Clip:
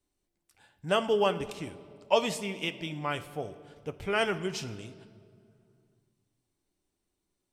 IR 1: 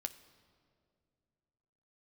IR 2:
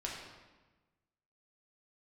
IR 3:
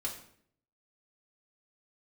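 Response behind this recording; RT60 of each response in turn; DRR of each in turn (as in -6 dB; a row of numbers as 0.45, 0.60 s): 1; 2.3, 1.2, 0.60 s; 9.0, -3.5, -2.0 dB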